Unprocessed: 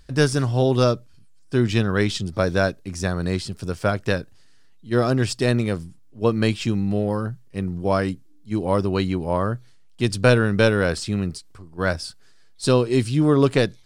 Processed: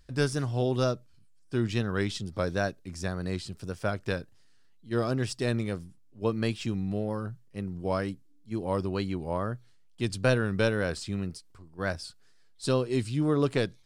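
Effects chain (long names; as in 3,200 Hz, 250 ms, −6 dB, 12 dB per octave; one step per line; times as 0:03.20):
tape wow and flutter 61 cents
level −8.5 dB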